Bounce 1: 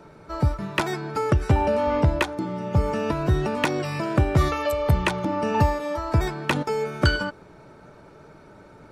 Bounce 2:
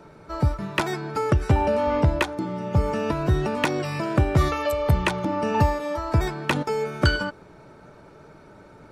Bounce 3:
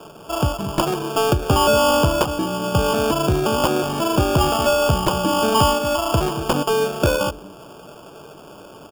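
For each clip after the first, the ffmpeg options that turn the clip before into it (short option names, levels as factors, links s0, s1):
-af anull
-filter_complex "[0:a]asplit=2[s0][s1];[s1]highpass=f=720:p=1,volume=6.31,asoftclip=type=tanh:threshold=0.501[s2];[s0][s2]amix=inputs=2:normalize=0,lowpass=f=1000:p=1,volume=0.501,acrossover=split=420[s3][s4];[s3]aecho=1:1:229:0.266[s5];[s4]acrusher=samples=22:mix=1:aa=0.000001[s6];[s5][s6]amix=inputs=2:normalize=0,volume=1.41"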